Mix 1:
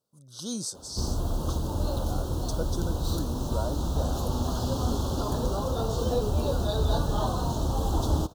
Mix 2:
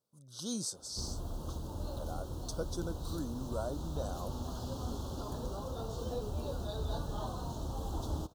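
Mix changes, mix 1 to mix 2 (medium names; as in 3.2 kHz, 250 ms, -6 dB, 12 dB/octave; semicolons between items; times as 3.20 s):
speech -4.0 dB; background -11.5 dB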